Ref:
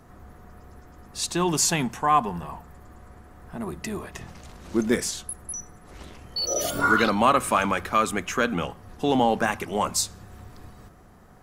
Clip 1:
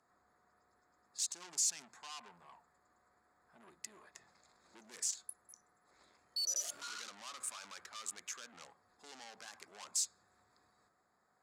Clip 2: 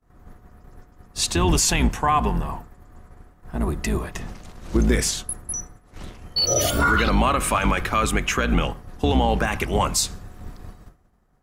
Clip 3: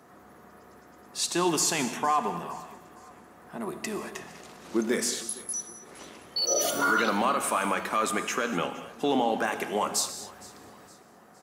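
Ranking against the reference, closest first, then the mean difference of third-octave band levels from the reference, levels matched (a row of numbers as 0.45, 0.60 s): 2, 3, 1; 4.0, 5.5, 8.0 dB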